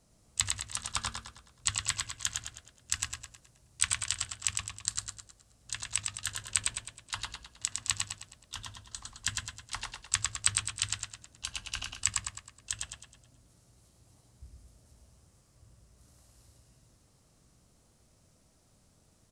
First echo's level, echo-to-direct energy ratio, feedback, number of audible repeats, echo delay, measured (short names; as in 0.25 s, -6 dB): -4.0 dB, -3.0 dB, 44%, 5, 0.106 s